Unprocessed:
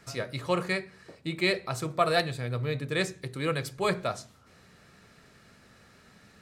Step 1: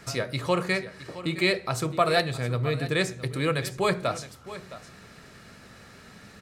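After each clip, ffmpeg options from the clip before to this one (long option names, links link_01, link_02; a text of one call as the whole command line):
ffmpeg -i in.wav -filter_complex "[0:a]asplit=2[link_01][link_02];[link_02]acompressor=threshold=-36dB:ratio=6,volume=3dB[link_03];[link_01][link_03]amix=inputs=2:normalize=0,aecho=1:1:665:0.178" out.wav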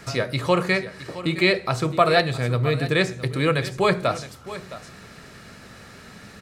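ffmpeg -i in.wav -filter_complex "[0:a]acrossover=split=5200[link_01][link_02];[link_02]acompressor=threshold=-47dB:ratio=4:attack=1:release=60[link_03];[link_01][link_03]amix=inputs=2:normalize=0,volume=5dB" out.wav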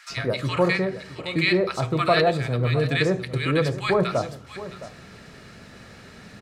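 ffmpeg -i in.wav -filter_complex "[0:a]highshelf=frequency=8200:gain=-9.5,acrossover=split=1200[link_01][link_02];[link_01]adelay=100[link_03];[link_03][link_02]amix=inputs=2:normalize=0" out.wav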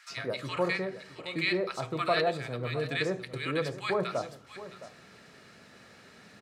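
ffmpeg -i in.wav -af "highpass=frequency=260:poles=1,volume=-7dB" out.wav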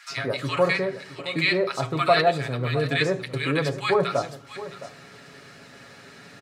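ffmpeg -i in.wav -af "aecho=1:1:7.2:0.51,volume=6.5dB" out.wav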